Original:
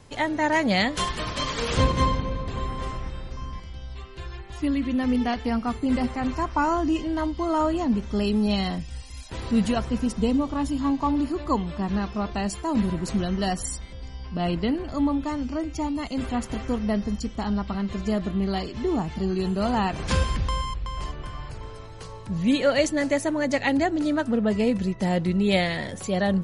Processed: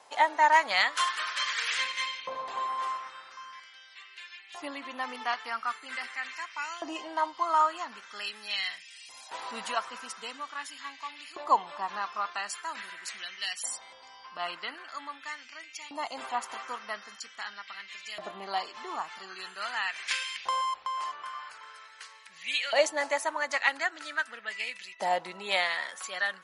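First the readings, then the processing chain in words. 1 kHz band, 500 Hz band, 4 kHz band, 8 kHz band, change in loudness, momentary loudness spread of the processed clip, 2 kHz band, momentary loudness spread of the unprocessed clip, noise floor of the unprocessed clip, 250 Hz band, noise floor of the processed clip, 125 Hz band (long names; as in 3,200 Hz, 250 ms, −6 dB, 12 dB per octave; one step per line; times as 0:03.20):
−0.5 dB, −9.5 dB, −0.5 dB, −2.5 dB, −6.0 dB, 17 LU, +1.0 dB, 14 LU, −39 dBFS, −26.5 dB, −52 dBFS, below −35 dB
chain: auto-filter high-pass saw up 0.44 Hz 740–2,500 Hz
harmonic generator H 7 −40 dB, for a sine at −6.5 dBFS
level −2 dB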